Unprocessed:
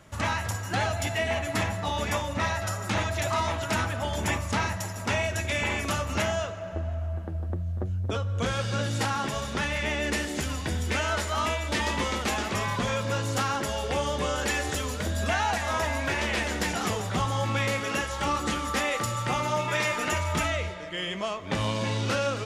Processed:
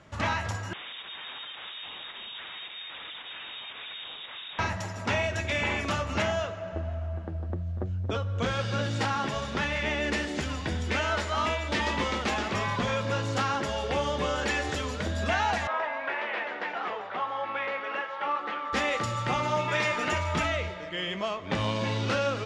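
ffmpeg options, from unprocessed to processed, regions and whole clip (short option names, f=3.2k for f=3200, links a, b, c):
-filter_complex "[0:a]asettb=1/sr,asplit=3[a][b][c];[a]atrim=end=0.734[d];[b]atrim=start=0.73:end=4.59,asetpts=PTS-STARTPTS,afade=t=in:d=0.004:c=qsin,afade=t=out:st=3.856:d=0.004:c=qsin,acrossover=split=170|3000[e][f][g];[f]acompressor=threshold=-39dB:ratio=3:attack=3.2:release=140:knee=2.83:detection=peak[h];[e][h][g]amix=inputs=3:normalize=0,aeval=exprs='0.0188*(abs(mod(val(0)/0.0188+3,4)-2)-1)':c=same,lowpass=f=3.2k:t=q:w=0.5098,lowpass=f=3.2k:t=q:w=0.6013,lowpass=f=3.2k:t=q:w=0.9,lowpass=f=3.2k:t=q:w=2.563,afreqshift=-3800[i];[c]atrim=start=4.586[j];[d][i]acrossfade=d=0.004:c1=hsin:c2=qsin[k];[k][j]acrossfade=d=0.004:c1=qsin:c2=hsin,asettb=1/sr,asplit=3[l][m][n];[l]atrim=end=15.674[o];[m]atrim=start=15.67:end=18.73,asetpts=PTS-STARTPTS,afade=t=in:d=0.004:c=qsin,afade=t=out:st=3.056:d=0.004:c=qsin,highpass=590,lowpass=2.5k,aemphasis=mode=reproduction:type=50fm[p];[n]atrim=start=18.726[q];[o][p]acrossfade=d=0.004:c1=hsin:c2=qsin[r];[r][q]acrossfade=d=0.004:c1=qsin:c2=hsin,lowpass=5k,lowshelf=f=64:g=-6"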